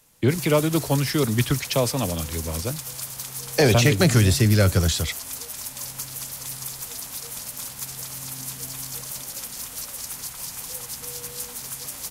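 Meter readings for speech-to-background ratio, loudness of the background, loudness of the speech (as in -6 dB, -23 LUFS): 10.0 dB, -31.5 LUFS, -21.5 LUFS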